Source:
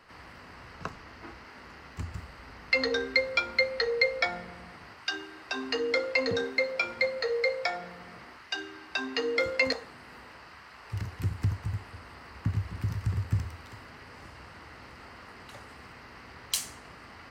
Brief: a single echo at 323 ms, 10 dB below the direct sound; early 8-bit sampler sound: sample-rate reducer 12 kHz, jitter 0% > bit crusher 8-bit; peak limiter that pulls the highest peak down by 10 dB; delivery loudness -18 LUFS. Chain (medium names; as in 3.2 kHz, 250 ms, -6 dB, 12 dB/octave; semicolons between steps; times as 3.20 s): peak limiter -19.5 dBFS; delay 323 ms -10 dB; sample-rate reducer 12 kHz, jitter 0%; bit crusher 8-bit; trim +15 dB